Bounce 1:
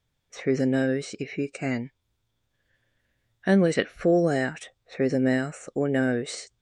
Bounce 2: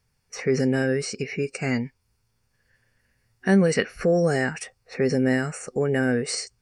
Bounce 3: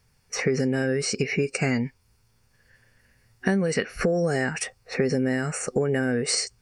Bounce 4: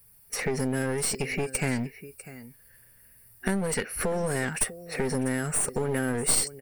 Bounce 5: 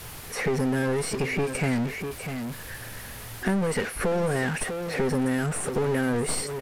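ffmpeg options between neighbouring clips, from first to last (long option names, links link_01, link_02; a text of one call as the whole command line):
ffmpeg -i in.wav -filter_complex "[0:a]superequalizer=6b=0.398:8b=0.562:13b=0.316:14b=1.78:16b=2,asplit=2[link_01][link_02];[link_02]alimiter=limit=-21dB:level=0:latency=1,volume=-2.5dB[link_03];[link_01][link_03]amix=inputs=2:normalize=0" out.wav
ffmpeg -i in.wav -af "acompressor=threshold=-26dB:ratio=16,volume=6.5dB" out.wav
ffmpeg -i in.wav -filter_complex "[0:a]aecho=1:1:647:0.126,acrossover=split=520[link_01][link_02];[link_02]aexciter=amount=15.7:drive=4.6:freq=9300[link_03];[link_01][link_03]amix=inputs=2:normalize=0,aeval=exprs='clip(val(0),-1,0.0447)':channel_layout=same,volume=-2.5dB" out.wav
ffmpeg -i in.wav -af "aeval=exprs='val(0)+0.5*0.0473*sgn(val(0))':channel_layout=same,highshelf=frequency=3900:gain=-11,aresample=32000,aresample=44100" out.wav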